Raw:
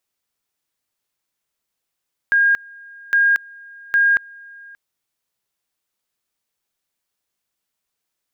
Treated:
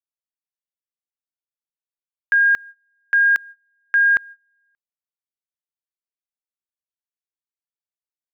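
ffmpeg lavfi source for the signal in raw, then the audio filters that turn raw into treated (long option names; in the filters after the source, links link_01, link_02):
-f lavfi -i "aevalsrc='pow(10,(-11.5-26*gte(mod(t,0.81),0.23))/20)*sin(2*PI*1620*t)':duration=2.43:sample_rate=44100"
-af "agate=range=-26dB:threshold=-34dB:ratio=16:detection=peak"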